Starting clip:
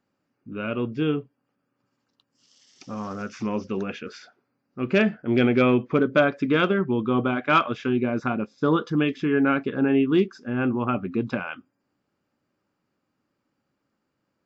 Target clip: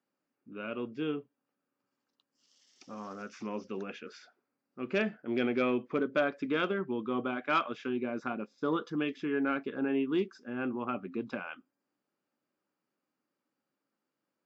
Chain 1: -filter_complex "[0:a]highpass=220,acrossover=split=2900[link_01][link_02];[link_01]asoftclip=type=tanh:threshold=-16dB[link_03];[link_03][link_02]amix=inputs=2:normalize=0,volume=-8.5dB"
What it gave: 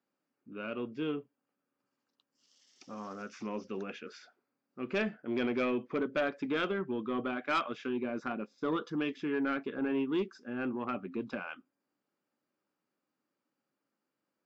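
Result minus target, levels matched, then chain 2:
soft clipping: distortion +12 dB
-filter_complex "[0:a]highpass=220,acrossover=split=2900[link_01][link_02];[link_01]asoftclip=type=tanh:threshold=-7.5dB[link_03];[link_03][link_02]amix=inputs=2:normalize=0,volume=-8.5dB"

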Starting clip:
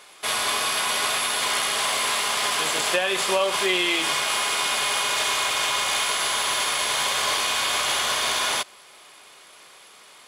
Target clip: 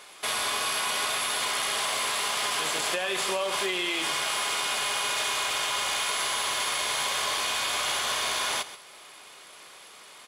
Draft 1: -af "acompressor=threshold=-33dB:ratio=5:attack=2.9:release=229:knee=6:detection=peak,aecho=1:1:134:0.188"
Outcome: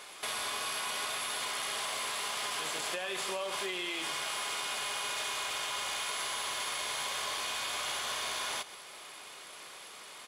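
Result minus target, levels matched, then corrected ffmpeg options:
downward compressor: peak gain reduction +7.5 dB
-af "acompressor=threshold=-23.5dB:ratio=5:attack=2.9:release=229:knee=6:detection=peak,aecho=1:1:134:0.188"

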